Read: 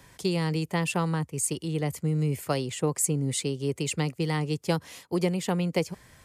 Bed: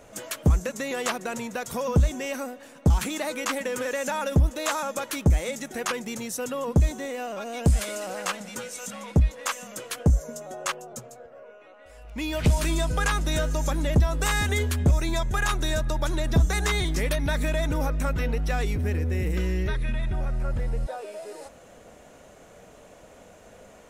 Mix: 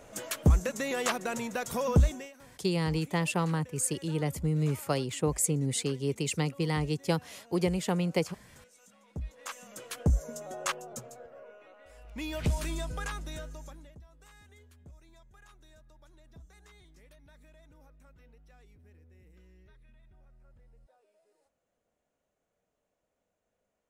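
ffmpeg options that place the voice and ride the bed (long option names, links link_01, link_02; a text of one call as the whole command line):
ffmpeg -i stem1.wav -i stem2.wav -filter_complex "[0:a]adelay=2400,volume=-2dB[link_01];[1:a]volume=18.5dB,afade=type=out:start_time=2.01:duration=0.31:silence=0.0841395,afade=type=in:start_time=9.08:duration=1.41:silence=0.0944061,afade=type=out:start_time=11.25:duration=2.7:silence=0.0334965[link_02];[link_01][link_02]amix=inputs=2:normalize=0" out.wav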